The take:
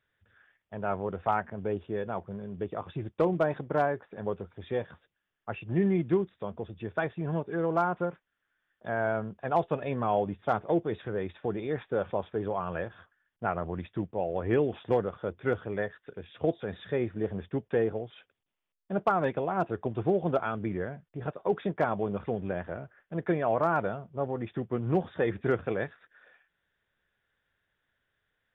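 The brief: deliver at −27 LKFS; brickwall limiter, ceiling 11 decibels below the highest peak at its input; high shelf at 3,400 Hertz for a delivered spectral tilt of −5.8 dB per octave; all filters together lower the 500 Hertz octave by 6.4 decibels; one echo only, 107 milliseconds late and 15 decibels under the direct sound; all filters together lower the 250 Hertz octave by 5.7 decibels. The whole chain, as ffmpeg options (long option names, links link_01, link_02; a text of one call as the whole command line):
ffmpeg -i in.wav -af "equalizer=frequency=250:width_type=o:gain=-6.5,equalizer=frequency=500:width_type=o:gain=-6.5,highshelf=frequency=3400:gain=5,alimiter=level_in=2.5dB:limit=-24dB:level=0:latency=1,volume=-2.5dB,aecho=1:1:107:0.178,volume=12dB" out.wav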